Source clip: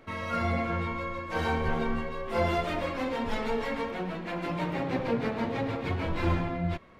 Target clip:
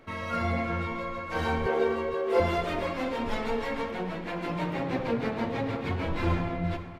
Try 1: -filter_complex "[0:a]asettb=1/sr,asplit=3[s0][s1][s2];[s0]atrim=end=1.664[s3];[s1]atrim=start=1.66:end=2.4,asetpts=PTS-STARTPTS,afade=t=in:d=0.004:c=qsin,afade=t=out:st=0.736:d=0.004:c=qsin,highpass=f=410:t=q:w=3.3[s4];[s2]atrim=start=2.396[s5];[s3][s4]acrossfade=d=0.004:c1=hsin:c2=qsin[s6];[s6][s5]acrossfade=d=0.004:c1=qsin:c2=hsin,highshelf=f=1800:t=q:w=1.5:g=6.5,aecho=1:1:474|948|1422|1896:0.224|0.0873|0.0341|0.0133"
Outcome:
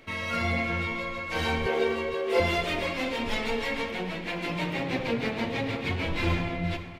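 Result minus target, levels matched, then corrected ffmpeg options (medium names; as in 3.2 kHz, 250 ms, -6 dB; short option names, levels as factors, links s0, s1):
4 kHz band +6.5 dB
-filter_complex "[0:a]asettb=1/sr,asplit=3[s0][s1][s2];[s0]atrim=end=1.664[s3];[s1]atrim=start=1.66:end=2.4,asetpts=PTS-STARTPTS,afade=t=in:d=0.004:c=qsin,afade=t=out:st=0.736:d=0.004:c=qsin,highpass=f=410:t=q:w=3.3[s4];[s2]atrim=start=2.396[s5];[s3][s4]acrossfade=d=0.004:c1=hsin:c2=qsin[s6];[s6][s5]acrossfade=d=0.004:c1=qsin:c2=hsin,aecho=1:1:474|948|1422|1896:0.224|0.0873|0.0341|0.0133"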